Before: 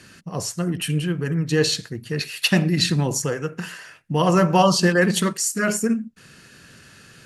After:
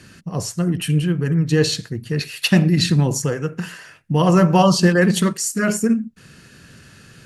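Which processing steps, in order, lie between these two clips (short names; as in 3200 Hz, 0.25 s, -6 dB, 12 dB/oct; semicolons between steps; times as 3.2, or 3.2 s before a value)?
low shelf 270 Hz +7 dB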